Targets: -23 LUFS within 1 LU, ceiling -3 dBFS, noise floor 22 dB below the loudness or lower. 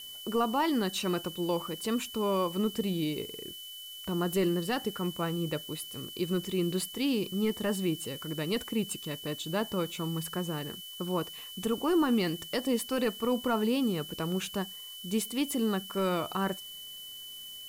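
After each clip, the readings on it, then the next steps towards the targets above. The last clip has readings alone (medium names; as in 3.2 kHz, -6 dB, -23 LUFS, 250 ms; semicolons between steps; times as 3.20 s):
steady tone 3 kHz; tone level -43 dBFS; noise floor -45 dBFS; noise floor target -54 dBFS; loudness -32.0 LUFS; peak level -18.5 dBFS; loudness target -23.0 LUFS
-> band-stop 3 kHz, Q 30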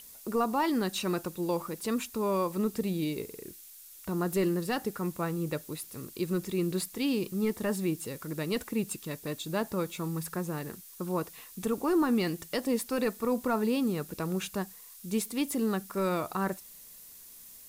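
steady tone not found; noise floor -51 dBFS; noise floor target -54 dBFS
-> noise reduction 6 dB, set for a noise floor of -51 dBFS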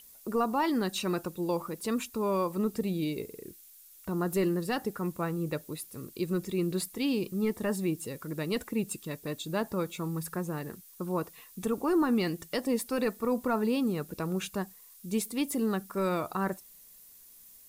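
noise floor -54 dBFS; loudness -32.0 LUFS; peak level -19.0 dBFS; loudness target -23.0 LUFS
-> trim +9 dB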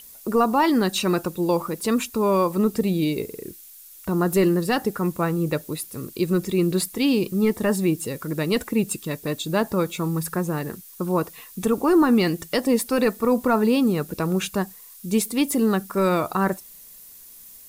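loudness -23.0 LUFS; peak level -10.0 dBFS; noise floor -45 dBFS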